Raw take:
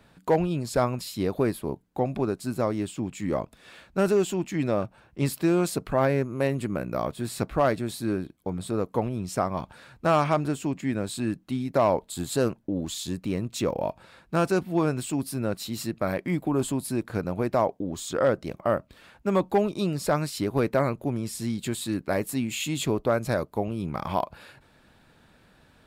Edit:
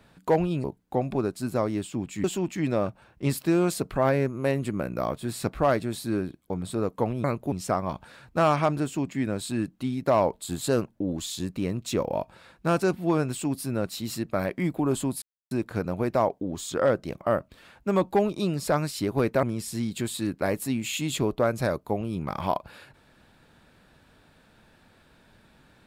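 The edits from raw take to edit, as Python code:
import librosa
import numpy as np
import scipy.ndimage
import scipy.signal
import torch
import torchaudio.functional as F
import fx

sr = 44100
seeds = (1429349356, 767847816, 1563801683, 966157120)

y = fx.edit(x, sr, fx.cut(start_s=0.64, length_s=1.04),
    fx.cut(start_s=3.28, length_s=0.92),
    fx.insert_silence(at_s=16.9, length_s=0.29),
    fx.move(start_s=20.82, length_s=0.28, to_s=9.2), tone=tone)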